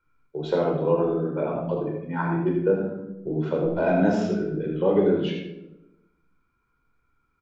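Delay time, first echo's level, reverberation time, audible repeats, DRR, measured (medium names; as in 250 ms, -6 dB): 78 ms, -8.0 dB, 0.95 s, 1, -1.5 dB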